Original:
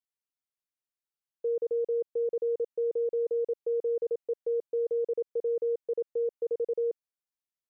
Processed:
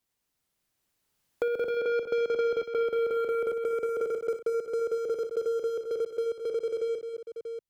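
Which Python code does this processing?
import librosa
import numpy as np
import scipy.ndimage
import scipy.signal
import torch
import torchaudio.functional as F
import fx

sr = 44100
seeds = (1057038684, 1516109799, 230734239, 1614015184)

p1 = fx.doppler_pass(x, sr, speed_mps=6, closest_m=3.1, pass_at_s=2.27)
p2 = fx.low_shelf(p1, sr, hz=350.0, db=7.5)
p3 = fx.leveller(p2, sr, passes=2)
p4 = fx.over_compress(p3, sr, threshold_db=-31.0, ratio=-1.0)
p5 = p3 + (p4 * 10.0 ** (-1.0 / 20.0))
p6 = 10.0 ** (-24.0 / 20.0) * np.tanh(p5 / 10.0 ** (-24.0 / 20.0))
p7 = p6 + fx.echo_multitap(p6, sr, ms=(60, 61, 214, 637), db=(-9.0, -17.5, -10.0, -18.0), dry=0)
y = fx.band_squash(p7, sr, depth_pct=70)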